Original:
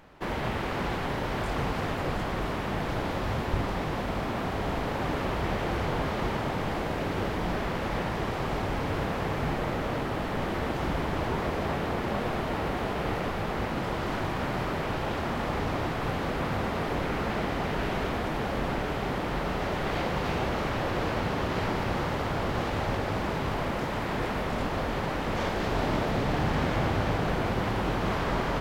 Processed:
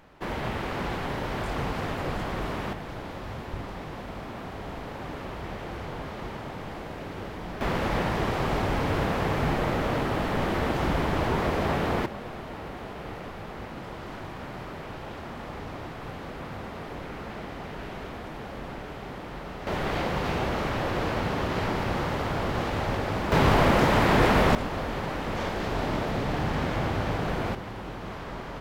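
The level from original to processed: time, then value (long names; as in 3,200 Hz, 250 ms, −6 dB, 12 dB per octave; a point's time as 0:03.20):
−0.5 dB
from 0:02.73 −7 dB
from 0:07.61 +3.5 dB
from 0:12.06 −8 dB
from 0:19.67 +1 dB
from 0:23.32 +10 dB
from 0:24.55 −1 dB
from 0:27.55 −9 dB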